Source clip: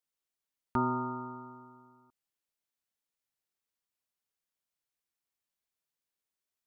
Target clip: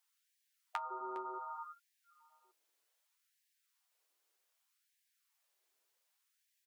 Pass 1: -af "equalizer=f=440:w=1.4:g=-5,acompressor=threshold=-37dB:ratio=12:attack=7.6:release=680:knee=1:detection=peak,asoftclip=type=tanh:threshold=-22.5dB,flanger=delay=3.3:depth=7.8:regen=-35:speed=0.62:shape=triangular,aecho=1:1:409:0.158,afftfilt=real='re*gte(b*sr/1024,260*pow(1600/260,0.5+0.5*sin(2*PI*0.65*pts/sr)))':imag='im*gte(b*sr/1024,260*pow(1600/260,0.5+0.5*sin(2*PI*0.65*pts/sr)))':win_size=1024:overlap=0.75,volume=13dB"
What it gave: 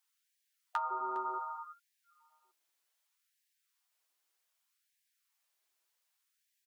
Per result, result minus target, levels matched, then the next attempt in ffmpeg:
compressor: peak gain reduction -8.5 dB; 500 Hz band -4.5 dB
-af "equalizer=f=440:w=1.4:g=-5,acompressor=threshold=-44dB:ratio=12:attack=7.6:release=680:knee=1:detection=peak,asoftclip=type=tanh:threshold=-22.5dB,flanger=delay=3.3:depth=7.8:regen=-35:speed=0.62:shape=triangular,aecho=1:1:409:0.158,afftfilt=real='re*gte(b*sr/1024,260*pow(1600/260,0.5+0.5*sin(2*PI*0.65*pts/sr)))':imag='im*gte(b*sr/1024,260*pow(1600/260,0.5+0.5*sin(2*PI*0.65*pts/sr)))':win_size=1024:overlap=0.75,volume=13dB"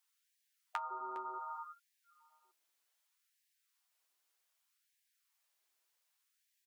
500 Hz band -4.5 dB
-af "equalizer=f=440:w=1.4:g=3,acompressor=threshold=-44dB:ratio=12:attack=7.6:release=680:knee=1:detection=peak,asoftclip=type=tanh:threshold=-22.5dB,flanger=delay=3.3:depth=7.8:regen=-35:speed=0.62:shape=triangular,aecho=1:1:409:0.158,afftfilt=real='re*gte(b*sr/1024,260*pow(1600/260,0.5+0.5*sin(2*PI*0.65*pts/sr)))':imag='im*gte(b*sr/1024,260*pow(1600/260,0.5+0.5*sin(2*PI*0.65*pts/sr)))':win_size=1024:overlap=0.75,volume=13dB"

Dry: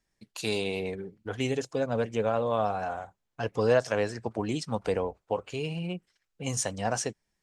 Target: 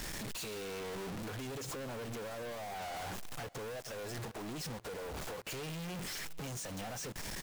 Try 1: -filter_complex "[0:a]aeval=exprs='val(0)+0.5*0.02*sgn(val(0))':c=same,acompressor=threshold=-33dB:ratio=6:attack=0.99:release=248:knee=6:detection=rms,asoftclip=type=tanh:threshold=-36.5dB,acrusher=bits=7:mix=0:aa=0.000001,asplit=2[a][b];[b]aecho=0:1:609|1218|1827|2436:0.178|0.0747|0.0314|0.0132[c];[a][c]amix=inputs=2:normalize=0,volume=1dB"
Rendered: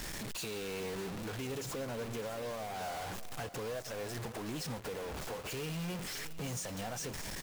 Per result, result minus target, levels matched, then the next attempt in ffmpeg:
echo-to-direct +8 dB; soft clip: distortion -6 dB
-filter_complex "[0:a]aeval=exprs='val(0)+0.5*0.02*sgn(val(0))':c=same,acompressor=threshold=-33dB:ratio=6:attack=0.99:release=248:knee=6:detection=rms,asoftclip=type=tanh:threshold=-36.5dB,acrusher=bits=7:mix=0:aa=0.000001,asplit=2[a][b];[b]aecho=0:1:609|1218|1827:0.0708|0.0297|0.0125[c];[a][c]amix=inputs=2:normalize=0,volume=1dB"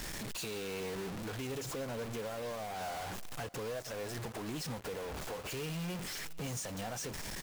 soft clip: distortion -6 dB
-filter_complex "[0:a]aeval=exprs='val(0)+0.5*0.02*sgn(val(0))':c=same,acompressor=threshold=-33dB:ratio=6:attack=0.99:release=248:knee=6:detection=rms,asoftclip=type=tanh:threshold=-44dB,acrusher=bits=7:mix=0:aa=0.000001,asplit=2[a][b];[b]aecho=0:1:609|1218|1827:0.0708|0.0297|0.0125[c];[a][c]amix=inputs=2:normalize=0,volume=1dB"

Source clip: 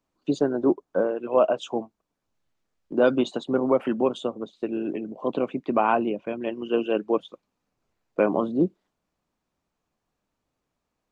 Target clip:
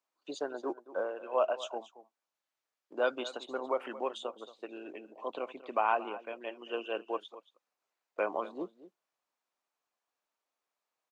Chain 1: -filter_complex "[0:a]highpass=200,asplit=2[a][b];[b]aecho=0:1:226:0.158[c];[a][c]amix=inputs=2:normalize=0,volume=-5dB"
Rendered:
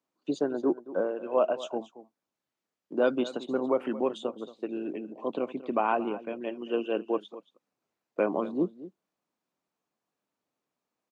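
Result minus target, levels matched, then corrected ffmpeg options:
250 Hz band +8.0 dB
-filter_complex "[0:a]highpass=670,asplit=2[a][b];[b]aecho=0:1:226:0.158[c];[a][c]amix=inputs=2:normalize=0,volume=-5dB"

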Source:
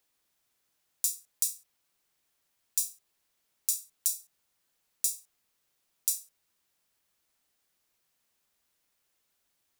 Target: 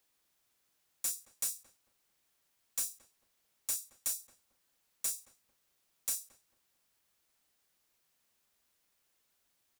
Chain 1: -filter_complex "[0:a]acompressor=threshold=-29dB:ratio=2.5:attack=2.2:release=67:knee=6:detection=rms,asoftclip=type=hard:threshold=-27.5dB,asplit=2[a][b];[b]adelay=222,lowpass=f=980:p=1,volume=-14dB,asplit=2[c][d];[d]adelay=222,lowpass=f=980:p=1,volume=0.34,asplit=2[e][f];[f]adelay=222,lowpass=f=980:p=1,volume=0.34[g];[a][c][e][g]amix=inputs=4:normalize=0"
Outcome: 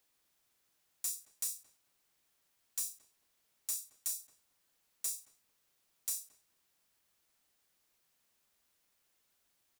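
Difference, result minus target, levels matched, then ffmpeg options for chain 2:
compressor: peak gain reduction +4.5 dB
-filter_complex "[0:a]acompressor=threshold=-21dB:ratio=2.5:attack=2.2:release=67:knee=6:detection=rms,asoftclip=type=hard:threshold=-27.5dB,asplit=2[a][b];[b]adelay=222,lowpass=f=980:p=1,volume=-14dB,asplit=2[c][d];[d]adelay=222,lowpass=f=980:p=1,volume=0.34,asplit=2[e][f];[f]adelay=222,lowpass=f=980:p=1,volume=0.34[g];[a][c][e][g]amix=inputs=4:normalize=0"

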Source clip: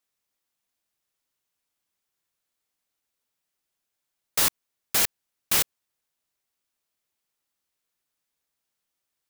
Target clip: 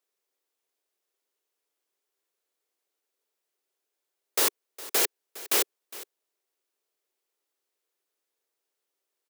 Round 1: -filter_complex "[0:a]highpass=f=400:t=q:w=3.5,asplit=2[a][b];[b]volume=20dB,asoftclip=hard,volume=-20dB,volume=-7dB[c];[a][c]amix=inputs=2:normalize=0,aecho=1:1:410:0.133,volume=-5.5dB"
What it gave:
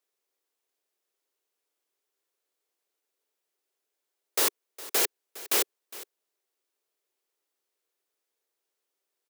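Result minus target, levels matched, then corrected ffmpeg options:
overloaded stage: distortion +26 dB
-filter_complex "[0:a]highpass=f=400:t=q:w=3.5,asplit=2[a][b];[b]volume=10.5dB,asoftclip=hard,volume=-10.5dB,volume=-7dB[c];[a][c]amix=inputs=2:normalize=0,aecho=1:1:410:0.133,volume=-5.5dB"

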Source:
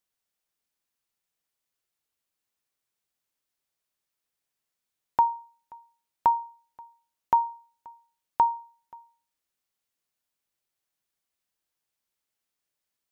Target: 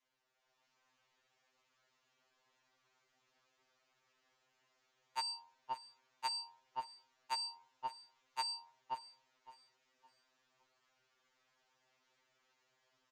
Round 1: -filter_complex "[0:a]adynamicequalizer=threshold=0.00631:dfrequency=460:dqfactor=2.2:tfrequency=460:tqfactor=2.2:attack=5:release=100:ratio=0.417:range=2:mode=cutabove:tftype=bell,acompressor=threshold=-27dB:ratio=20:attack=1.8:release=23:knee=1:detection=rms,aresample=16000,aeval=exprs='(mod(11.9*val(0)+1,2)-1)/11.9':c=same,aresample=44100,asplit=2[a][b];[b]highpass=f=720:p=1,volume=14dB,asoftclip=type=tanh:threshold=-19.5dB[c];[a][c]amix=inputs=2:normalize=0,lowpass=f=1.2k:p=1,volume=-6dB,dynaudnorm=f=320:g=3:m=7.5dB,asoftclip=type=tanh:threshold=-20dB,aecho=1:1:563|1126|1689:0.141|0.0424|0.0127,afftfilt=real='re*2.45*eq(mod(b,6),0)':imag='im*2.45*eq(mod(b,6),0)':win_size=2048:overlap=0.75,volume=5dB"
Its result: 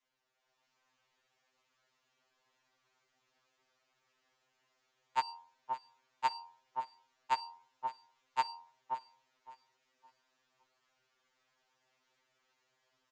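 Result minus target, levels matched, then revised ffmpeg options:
soft clip: distortion -10 dB
-filter_complex "[0:a]adynamicequalizer=threshold=0.00631:dfrequency=460:dqfactor=2.2:tfrequency=460:tqfactor=2.2:attack=5:release=100:ratio=0.417:range=2:mode=cutabove:tftype=bell,acompressor=threshold=-27dB:ratio=20:attack=1.8:release=23:knee=1:detection=rms,aresample=16000,aeval=exprs='(mod(11.9*val(0)+1,2)-1)/11.9':c=same,aresample=44100,asplit=2[a][b];[b]highpass=f=720:p=1,volume=14dB,asoftclip=type=tanh:threshold=-19.5dB[c];[a][c]amix=inputs=2:normalize=0,lowpass=f=1.2k:p=1,volume=-6dB,dynaudnorm=f=320:g=3:m=7.5dB,asoftclip=type=tanh:threshold=-30.5dB,aecho=1:1:563|1126|1689:0.141|0.0424|0.0127,afftfilt=real='re*2.45*eq(mod(b,6),0)':imag='im*2.45*eq(mod(b,6),0)':win_size=2048:overlap=0.75,volume=5dB"

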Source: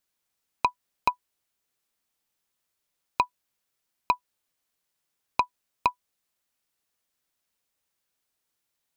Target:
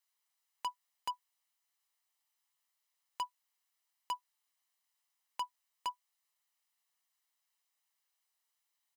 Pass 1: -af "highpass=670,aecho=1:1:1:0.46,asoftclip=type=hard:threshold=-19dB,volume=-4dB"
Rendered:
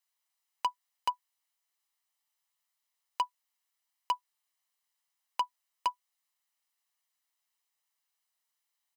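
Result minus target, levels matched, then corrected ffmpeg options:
hard clip: distortion -5 dB
-af "highpass=670,aecho=1:1:1:0.46,asoftclip=type=hard:threshold=-28.5dB,volume=-4dB"

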